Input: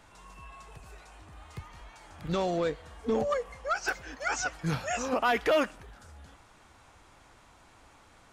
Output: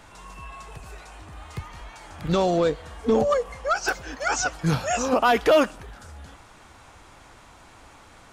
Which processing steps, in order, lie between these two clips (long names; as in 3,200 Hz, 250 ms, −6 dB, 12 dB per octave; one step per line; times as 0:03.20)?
dynamic equaliser 2,000 Hz, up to −6 dB, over −46 dBFS, Q 1.8
level +8 dB